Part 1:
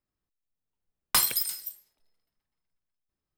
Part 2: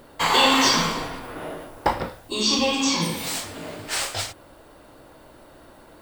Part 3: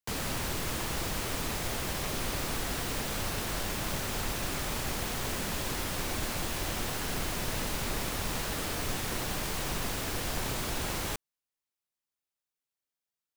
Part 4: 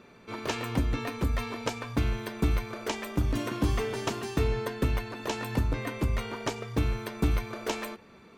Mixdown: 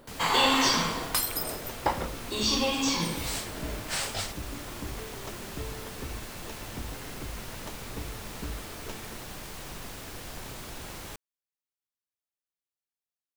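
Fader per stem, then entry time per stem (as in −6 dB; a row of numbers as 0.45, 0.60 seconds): −5.0, −5.5, −7.5, −12.5 decibels; 0.00, 0.00, 0.00, 1.20 seconds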